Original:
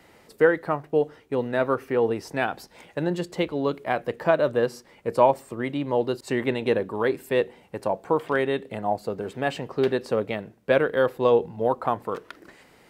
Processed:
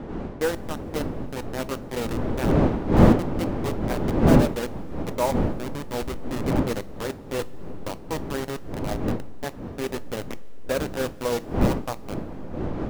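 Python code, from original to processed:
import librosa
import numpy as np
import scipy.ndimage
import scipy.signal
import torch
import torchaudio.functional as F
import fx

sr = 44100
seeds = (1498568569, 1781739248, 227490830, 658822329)

y = fx.delta_hold(x, sr, step_db=-17.5)
y = fx.dmg_wind(y, sr, seeds[0], corner_hz=350.0, level_db=-20.0)
y = fx.rev_double_slope(y, sr, seeds[1], early_s=0.24, late_s=3.7, knee_db=-19, drr_db=13.5)
y = y * librosa.db_to_amplitude(-6.0)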